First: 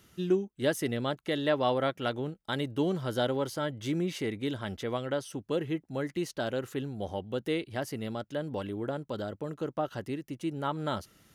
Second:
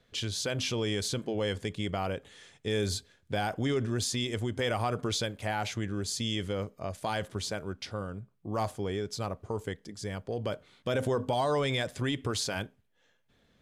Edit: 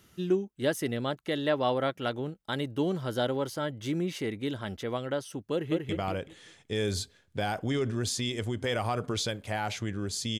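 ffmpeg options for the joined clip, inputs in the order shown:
-filter_complex "[0:a]apad=whole_dur=10.39,atrim=end=10.39,atrim=end=5.892[a];[1:a]atrim=start=1.838:end=6.34[b];[a][b]acrossfade=d=0.004:c1=hsin:c2=hsin,asplit=2[c][d];[d]afade=t=in:st=5.52:d=0.01,afade=t=out:st=5.89:d=0.01,aecho=0:1:190|380|570|760:0.749894|0.224968|0.0674905|0.0202471[e];[c][e]amix=inputs=2:normalize=0"

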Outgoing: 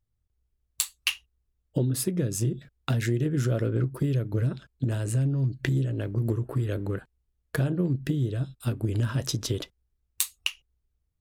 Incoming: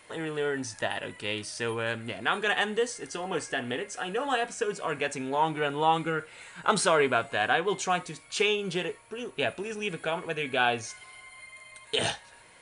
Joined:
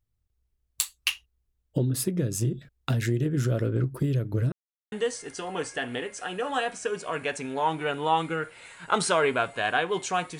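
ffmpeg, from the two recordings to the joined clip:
-filter_complex "[0:a]apad=whole_dur=10.39,atrim=end=10.39,asplit=2[a][b];[a]atrim=end=4.52,asetpts=PTS-STARTPTS,afade=t=out:st=4.516:d=0.004:c=hsin[c];[b]atrim=start=4.52:end=4.92,asetpts=PTS-STARTPTS,volume=0[d];[1:a]atrim=start=2.68:end=8.15,asetpts=PTS-STARTPTS,afade=t=in:d=0.004:c=hsin[e];[c][d][e]concat=n=3:v=0:a=1"

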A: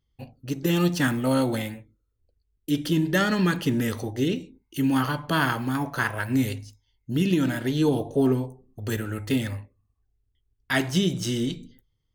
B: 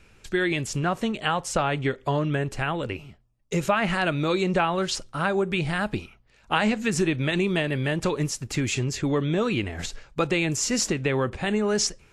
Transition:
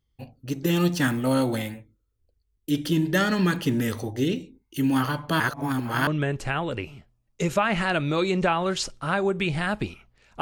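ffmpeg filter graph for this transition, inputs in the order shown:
-filter_complex "[0:a]apad=whole_dur=10.41,atrim=end=10.41,asplit=2[a][b];[a]atrim=end=5.402[c];[b]atrim=start=5.398:end=6.072,asetpts=PTS-STARTPTS,areverse[d];[1:a]atrim=start=2.188:end=6.53[e];[c][d]acrossfade=d=0.004:c1=hsin:c2=hsin[f];[f][e]acrossfade=d=0.004:c1=hsin:c2=hsin"

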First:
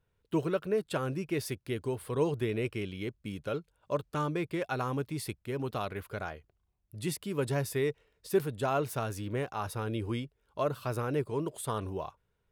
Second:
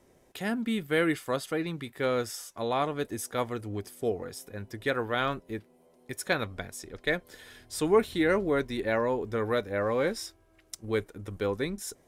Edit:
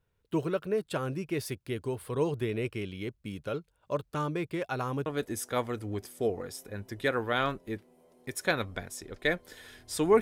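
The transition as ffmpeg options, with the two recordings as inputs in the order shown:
-filter_complex "[0:a]apad=whole_dur=10.21,atrim=end=10.21,atrim=end=5.062[a];[1:a]atrim=start=2.878:end=8.03[b];[a][b]acrossfade=d=0.004:c1=hsin:c2=hsin"

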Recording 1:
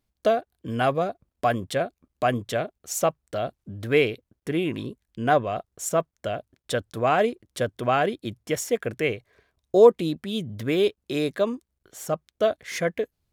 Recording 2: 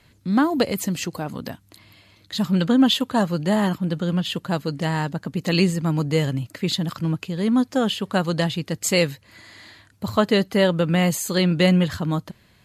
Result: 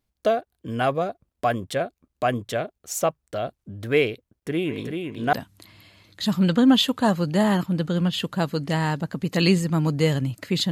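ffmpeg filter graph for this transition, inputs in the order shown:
-filter_complex "[0:a]asplit=3[a][b][c];[a]afade=t=out:st=4.67:d=0.02[d];[b]aecho=1:1:385|770|1155:0.562|0.112|0.0225,afade=t=in:st=4.67:d=0.02,afade=t=out:st=5.33:d=0.02[e];[c]afade=t=in:st=5.33:d=0.02[f];[d][e][f]amix=inputs=3:normalize=0,apad=whole_dur=10.71,atrim=end=10.71,atrim=end=5.332[g];[1:a]atrim=start=1.448:end=6.83[h];[g][h]acrossfade=d=0.004:c1=hsin:c2=hsin"

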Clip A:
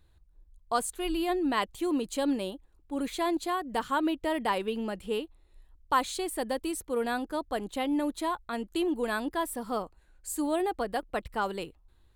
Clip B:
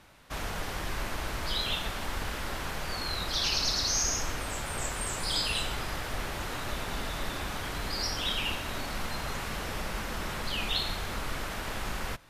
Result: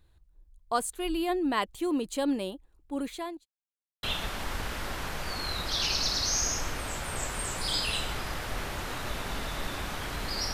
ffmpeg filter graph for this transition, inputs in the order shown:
-filter_complex "[0:a]apad=whole_dur=10.53,atrim=end=10.53,asplit=2[a][b];[a]atrim=end=3.46,asetpts=PTS-STARTPTS,afade=t=out:st=2.95:d=0.51[c];[b]atrim=start=3.46:end=4.03,asetpts=PTS-STARTPTS,volume=0[d];[1:a]atrim=start=1.65:end=8.15,asetpts=PTS-STARTPTS,afade=t=in:d=0.004:c=hsin[e];[c][d][e]concat=n=3:v=0:a=1"

